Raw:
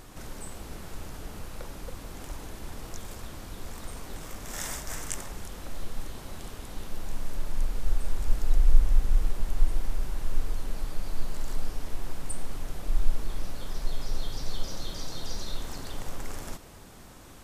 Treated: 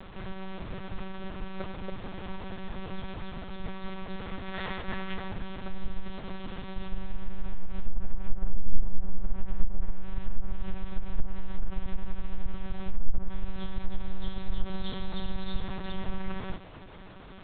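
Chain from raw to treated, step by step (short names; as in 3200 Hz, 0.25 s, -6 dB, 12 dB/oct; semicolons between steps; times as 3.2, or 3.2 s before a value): treble ducked by the level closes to 1100 Hz, closed at -15 dBFS; monotone LPC vocoder at 8 kHz 190 Hz; gain +2.5 dB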